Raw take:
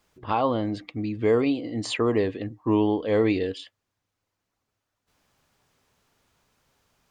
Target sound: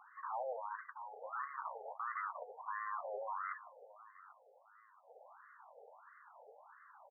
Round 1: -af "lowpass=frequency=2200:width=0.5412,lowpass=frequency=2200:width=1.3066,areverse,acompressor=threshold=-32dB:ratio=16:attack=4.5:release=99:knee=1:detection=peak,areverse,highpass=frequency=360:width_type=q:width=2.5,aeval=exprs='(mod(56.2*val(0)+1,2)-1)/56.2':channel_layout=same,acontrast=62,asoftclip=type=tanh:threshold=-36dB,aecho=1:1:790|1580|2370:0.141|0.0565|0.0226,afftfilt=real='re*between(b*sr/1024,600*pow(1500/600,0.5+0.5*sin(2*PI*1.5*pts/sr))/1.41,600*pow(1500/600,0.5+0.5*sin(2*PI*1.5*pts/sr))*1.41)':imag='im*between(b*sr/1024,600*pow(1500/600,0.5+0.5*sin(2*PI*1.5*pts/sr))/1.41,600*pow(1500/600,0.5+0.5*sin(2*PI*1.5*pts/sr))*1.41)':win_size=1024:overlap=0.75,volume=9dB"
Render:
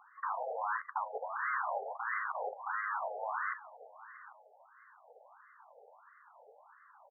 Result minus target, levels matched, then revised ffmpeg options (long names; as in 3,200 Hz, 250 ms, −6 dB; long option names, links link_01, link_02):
downward compressor: peak gain reduction −8 dB; soft clipping: distortion −6 dB
-af "lowpass=frequency=2200:width=0.5412,lowpass=frequency=2200:width=1.3066,areverse,acompressor=threshold=-40.5dB:ratio=16:attack=4.5:release=99:knee=1:detection=peak,areverse,highpass=frequency=360:width_type=q:width=2.5,aeval=exprs='(mod(56.2*val(0)+1,2)-1)/56.2':channel_layout=same,acontrast=62,asoftclip=type=tanh:threshold=-44.5dB,aecho=1:1:790|1580|2370:0.141|0.0565|0.0226,afftfilt=real='re*between(b*sr/1024,600*pow(1500/600,0.5+0.5*sin(2*PI*1.5*pts/sr))/1.41,600*pow(1500/600,0.5+0.5*sin(2*PI*1.5*pts/sr))*1.41)':imag='im*between(b*sr/1024,600*pow(1500/600,0.5+0.5*sin(2*PI*1.5*pts/sr))/1.41,600*pow(1500/600,0.5+0.5*sin(2*PI*1.5*pts/sr))*1.41)':win_size=1024:overlap=0.75,volume=9dB"